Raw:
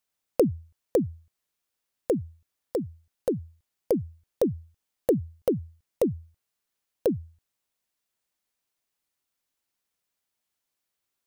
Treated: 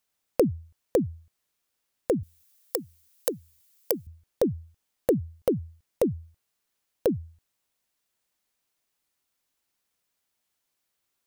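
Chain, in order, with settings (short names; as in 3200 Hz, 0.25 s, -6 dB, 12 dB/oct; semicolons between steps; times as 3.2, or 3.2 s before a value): in parallel at -1 dB: compressor, threshold -32 dBFS, peak gain reduction 15 dB; 2.23–4.07 on the sum: tilt +4.5 dB/oct; gain -2 dB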